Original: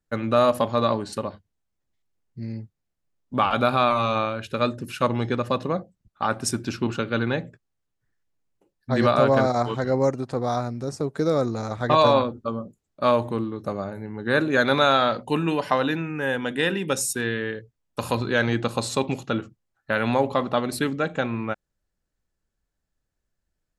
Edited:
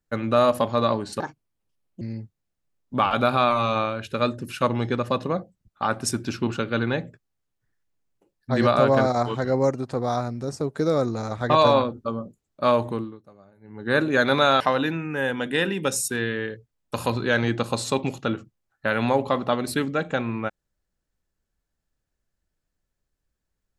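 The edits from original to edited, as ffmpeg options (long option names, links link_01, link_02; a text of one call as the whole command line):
ffmpeg -i in.wav -filter_complex "[0:a]asplit=6[link_01][link_02][link_03][link_04][link_05][link_06];[link_01]atrim=end=1.204[link_07];[link_02]atrim=start=1.2:end=2.41,asetpts=PTS-STARTPTS,asetrate=65709,aresample=44100[link_08];[link_03]atrim=start=2.406:end=13.62,asetpts=PTS-STARTPTS,afade=type=out:start_time=10.894:duration=0.32:silence=0.0794328[link_09];[link_04]atrim=start=13.62:end=14,asetpts=PTS-STARTPTS,volume=-22dB[link_10];[link_05]atrim=start=14:end=15.002,asetpts=PTS-STARTPTS,afade=type=in:duration=0.32:silence=0.0794328[link_11];[link_06]atrim=start=15.648[link_12];[link_07][link_08]acrossfade=duration=0.004:curve1=hsin:curve2=hsin[link_13];[link_09][link_10][link_11]concat=n=3:v=0:a=1[link_14];[link_13][link_14]acrossfade=duration=0.004:curve1=hsin:curve2=hsin[link_15];[link_15][link_12]acrossfade=duration=0.004:curve1=hsin:curve2=hsin" out.wav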